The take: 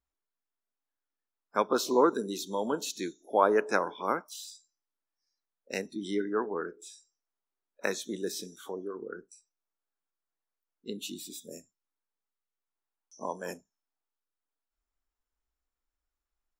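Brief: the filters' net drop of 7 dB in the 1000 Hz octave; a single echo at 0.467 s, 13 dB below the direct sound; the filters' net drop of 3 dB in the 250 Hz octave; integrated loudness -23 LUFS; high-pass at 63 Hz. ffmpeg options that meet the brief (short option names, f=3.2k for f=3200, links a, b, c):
-af "highpass=63,equalizer=f=250:t=o:g=-3.5,equalizer=f=1k:t=o:g=-8.5,aecho=1:1:467:0.224,volume=12dB"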